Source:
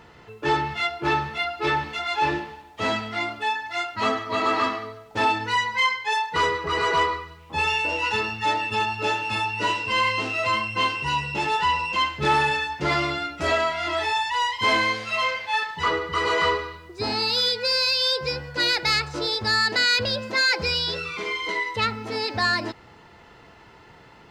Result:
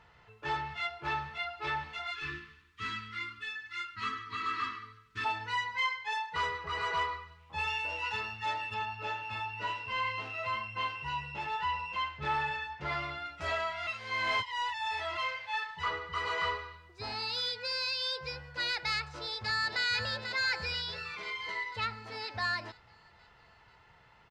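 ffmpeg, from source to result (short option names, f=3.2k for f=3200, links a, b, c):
-filter_complex "[0:a]asplit=3[a][b][c];[a]afade=t=out:st=2.1:d=0.02[d];[b]asuperstop=centerf=660:order=12:qfactor=1,afade=t=in:st=2.1:d=0.02,afade=t=out:st=5.24:d=0.02[e];[c]afade=t=in:st=5.24:d=0.02[f];[d][e][f]amix=inputs=3:normalize=0,asettb=1/sr,asplit=3[g][h][i];[g]atrim=end=8.744[j];[h]atrim=start=8.74:end=13.26,asetpts=PTS-STARTPTS,afade=t=in:d=0.004:c=qsin,afade=t=out:st=4.516:d=0.004:c=qsin,lowpass=f=3.1k:p=1[k];[i]atrim=start=13.256[l];[j][k]acrossfade=d=0.004:c1=hsin:c2=qsin[m];[m][l]acrossfade=d=0.004:c1=qsin:c2=hsin,asplit=2[n][o];[o]afade=t=in:st=18.95:d=0.01,afade=t=out:st=19.83:d=0.01,aecho=0:1:490|980|1470|1960|2450|2940|3430|3920:0.446684|0.26801|0.160806|0.0964837|0.0578902|0.0347341|0.0208405|0.0125043[p];[n][p]amix=inputs=2:normalize=0,asplit=3[q][r][s];[q]atrim=end=13.872[t];[r]atrim=start=13.868:end=15.172,asetpts=PTS-STARTPTS,areverse[u];[s]atrim=start=15.168[v];[t][u]acrossfade=d=0.004:c1=hsin:c2=hsin[w];[w][v]acrossfade=d=0.004:c1=hsin:c2=hsin,lowpass=f=3.2k:p=1,equalizer=f=300:w=0.83:g=-14,volume=-7.5dB"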